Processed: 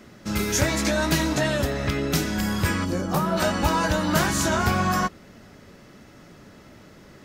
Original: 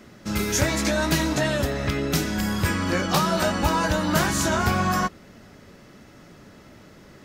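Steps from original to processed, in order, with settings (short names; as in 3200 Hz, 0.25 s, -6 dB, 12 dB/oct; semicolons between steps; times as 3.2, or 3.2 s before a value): 2.84–3.36 bell 1500 Hz -> 6700 Hz -13.5 dB 2.3 oct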